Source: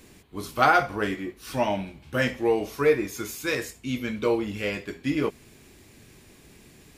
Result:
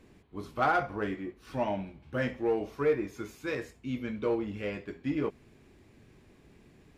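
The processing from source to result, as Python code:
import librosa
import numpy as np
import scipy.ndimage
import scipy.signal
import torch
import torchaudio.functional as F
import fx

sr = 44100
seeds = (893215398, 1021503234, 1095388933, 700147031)

p1 = fx.lowpass(x, sr, hz=1500.0, slope=6)
p2 = np.clip(p1, -10.0 ** (-21.0 / 20.0), 10.0 ** (-21.0 / 20.0))
p3 = p1 + (p2 * librosa.db_to_amplitude(-8.0))
y = p3 * librosa.db_to_amplitude(-7.5)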